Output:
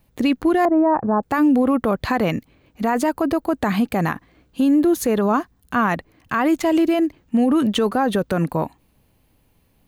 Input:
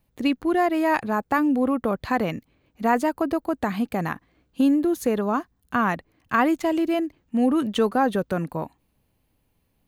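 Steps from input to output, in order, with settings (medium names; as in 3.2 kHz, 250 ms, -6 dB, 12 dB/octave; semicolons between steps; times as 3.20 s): 0.65–1.23 s: low-pass 1.1 kHz 24 dB/octave; peak limiter -19 dBFS, peak gain reduction 10.5 dB; trim +8.5 dB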